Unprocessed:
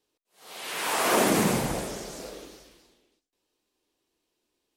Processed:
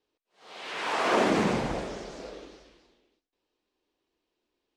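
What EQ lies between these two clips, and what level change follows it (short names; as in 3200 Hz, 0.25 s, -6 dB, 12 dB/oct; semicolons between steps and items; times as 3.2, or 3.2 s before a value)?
air absorption 140 m; bell 140 Hz -4 dB 1.1 oct; 0.0 dB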